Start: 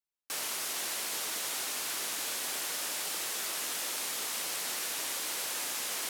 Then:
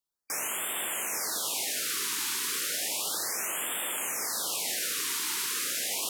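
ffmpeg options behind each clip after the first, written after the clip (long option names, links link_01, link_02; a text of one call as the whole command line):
ffmpeg -i in.wav -af "afftfilt=real='re*(1-between(b*sr/1024,600*pow(5200/600,0.5+0.5*sin(2*PI*0.33*pts/sr))/1.41,600*pow(5200/600,0.5+0.5*sin(2*PI*0.33*pts/sr))*1.41))':imag='im*(1-between(b*sr/1024,600*pow(5200/600,0.5+0.5*sin(2*PI*0.33*pts/sr))/1.41,600*pow(5200/600,0.5+0.5*sin(2*PI*0.33*pts/sr))*1.41))':win_size=1024:overlap=0.75,volume=4dB" out.wav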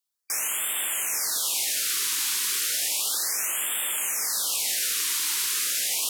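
ffmpeg -i in.wav -af "tiltshelf=frequency=1300:gain=-6" out.wav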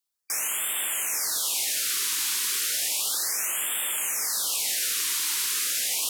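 ffmpeg -i in.wav -af "asoftclip=type=tanh:threshold=-15dB" out.wav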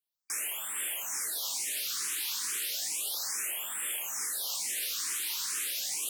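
ffmpeg -i in.wav -filter_complex "[0:a]asplit=2[link_01][link_02];[link_02]afreqshift=2.3[link_03];[link_01][link_03]amix=inputs=2:normalize=1,volume=-4dB" out.wav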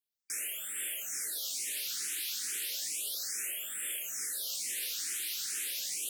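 ffmpeg -i in.wav -af "asuperstop=centerf=950:order=4:qfactor=1.1,volume=-2.5dB" out.wav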